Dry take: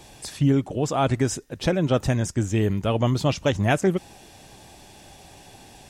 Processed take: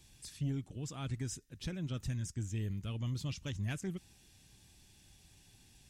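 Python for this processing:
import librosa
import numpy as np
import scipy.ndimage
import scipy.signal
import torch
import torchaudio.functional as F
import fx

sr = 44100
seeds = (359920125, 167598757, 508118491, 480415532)

y = fx.tone_stack(x, sr, knobs='6-0-2')
y = 10.0 ** (-28.5 / 20.0) * np.tanh(y / 10.0 ** (-28.5 / 20.0))
y = y * 10.0 ** (2.0 / 20.0)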